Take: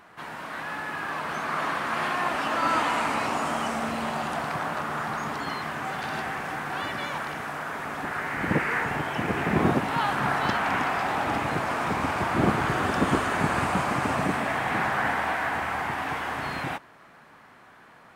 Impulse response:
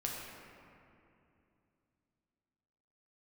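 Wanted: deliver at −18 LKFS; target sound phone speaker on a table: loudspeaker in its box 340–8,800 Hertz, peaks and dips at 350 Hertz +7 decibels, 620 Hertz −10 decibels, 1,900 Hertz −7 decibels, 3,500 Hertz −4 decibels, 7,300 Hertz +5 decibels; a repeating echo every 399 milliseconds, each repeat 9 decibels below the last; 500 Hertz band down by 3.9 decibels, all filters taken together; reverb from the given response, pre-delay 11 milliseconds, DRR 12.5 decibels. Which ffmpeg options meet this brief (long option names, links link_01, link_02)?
-filter_complex "[0:a]equalizer=frequency=500:width_type=o:gain=-3,aecho=1:1:399|798|1197|1596:0.355|0.124|0.0435|0.0152,asplit=2[link_01][link_02];[1:a]atrim=start_sample=2205,adelay=11[link_03];[link_02][link_03]afir=irnorm=-1:irlink=0,volume=-14.5dB[link_04];[link_01][link_04]amix=inputs=2:normalize=0,highpass=frequency=340:width=0.5412,highpass=frequency=340:width=1.3066,equalizer=frequency=350:width_type=q:width=4:gain=7,equalizer=frequency=620:width_type=q:width=4:gain=-10,equalizer=frequency=1900:width_type=q:width=4:gain=-7,equalizer=frequency=3500:width_type=q:width=4:gain=-4,equalizer=frequency=7300:width_type=q:width=4:gain=5,lowpass=frequency=8800:width=0.5412,lowpass=frequency=8800:width=1.3066,volume=11.5dB"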